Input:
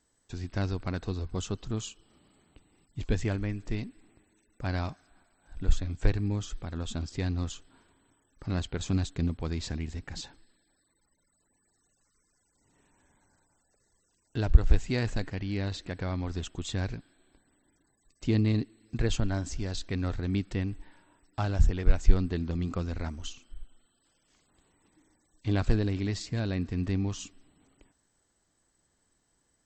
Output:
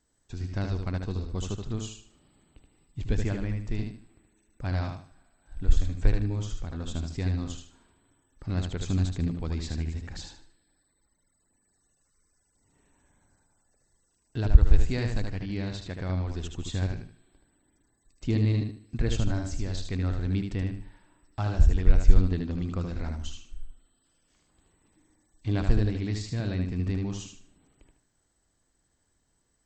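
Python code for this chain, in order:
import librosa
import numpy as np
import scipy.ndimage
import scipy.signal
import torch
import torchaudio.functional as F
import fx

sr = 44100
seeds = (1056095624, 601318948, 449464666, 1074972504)

p1 = fx.low_shelf(x, sr, hz=130.0, db=6.0)
p2 = p1 + fx.echo_feedback(p1, sr, ms=76, feedback_pct=29, wet_db=-5.0, dry=0)
y = p2 * 10.0 ** (-2.5 / 20.0)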